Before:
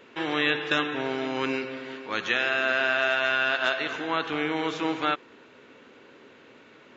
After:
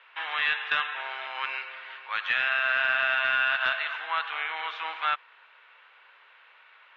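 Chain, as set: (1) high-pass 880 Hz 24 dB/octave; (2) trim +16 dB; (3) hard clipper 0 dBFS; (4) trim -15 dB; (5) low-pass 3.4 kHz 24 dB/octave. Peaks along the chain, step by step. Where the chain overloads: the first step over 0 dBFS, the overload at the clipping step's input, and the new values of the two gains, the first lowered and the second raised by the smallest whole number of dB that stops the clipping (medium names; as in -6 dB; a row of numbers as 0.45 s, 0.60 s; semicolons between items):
-10.0 dBFS, +6.0 dBFS, 0.0 dBFS, -15.0 dBFS, -14.0 dBFS; step 2, 6.0 dB; step 2 +10 dB, step 4 -9 dB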